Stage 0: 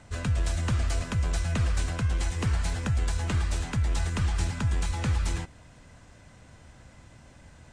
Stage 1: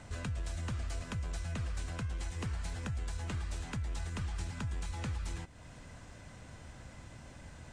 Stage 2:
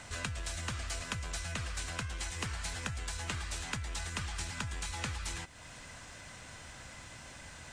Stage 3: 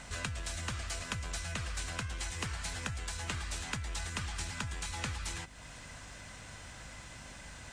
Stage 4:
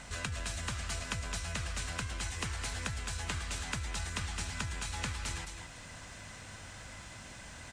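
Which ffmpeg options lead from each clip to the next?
-af "acompressor=threshold=0.00794:ratio=2.5,volume=1.12"
-af "tiltshelf=f=770:g=-6.5,volume=1.41"
-af "aeval=exprs='val(0)+0.002*(sin(2*PI*50*n/s)+sin(2*PI*2*50*n/s)/2+sin(2*PI*3*50*n/s)/3+sin(2*PI*4*50*n/s)/4+sin(2*PI*5*50*n/s)/5)':c=same"
-af "aecho=1:1:211:0.447"

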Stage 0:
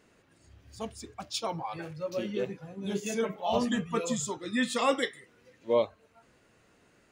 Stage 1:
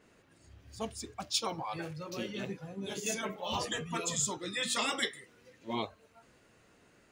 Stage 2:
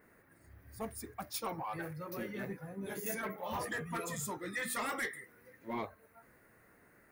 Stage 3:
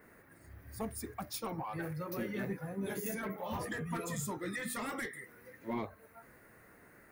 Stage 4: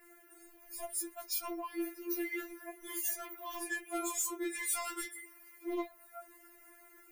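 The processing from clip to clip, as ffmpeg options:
-af "afftfilt=real='re*lt(hypot(re,im),0.178)':imag='im*lt(hypot(re,im),0.178)':win_size=1024:overlap=0.75,adynamicequalizer=threshold=0.00355:dfrequency=3100:dqfactor=0.7:tfrequency=3100:tqfactor=0.7:attack=5:release=100:ratio=0.375:range=2:mode=boostabove:tftype=highshelf"
-af "highshelf=f=2400:t=q:w=3:g=-7,aexciter=amount=7.5:drive=7.7:freq=10000,asoftclip=type=tanh:threshold=0.0355,volume=0.841"
-filter_complex "[0:a]acrossover=split=350[s0][s1];[s1]acompressor=threshold=0.00631:ratio=4[s2];[s0][s2]amix=inputs=2:normalize=0,volume=1.68"
-af "aexciter=amount=1.9:drive=5.2:freq=2200,afftfilt=real='re*4*eq(mod(b,16),0)':imag='im*4*eq(mod(b,16),0)':win_size=2048:overlap=0.75"

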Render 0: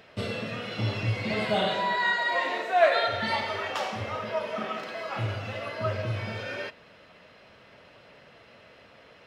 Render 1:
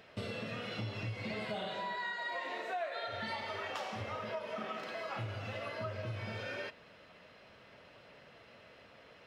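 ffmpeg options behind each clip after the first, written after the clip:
-af "acompressor=threshold=0.0251:ratio=6,volume=0.596"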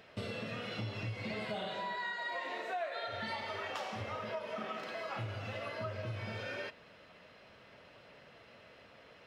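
-af anull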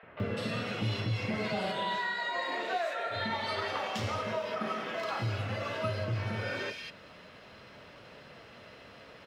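-filter_complex "[0:a]acrossover=split=620|2300[s0][s1][s2];[s0]adelay=30[s3];[s2]adelay=200[s4];[s3][s1][s4]amix=inputs=3:normalize=0,volume=2.51"

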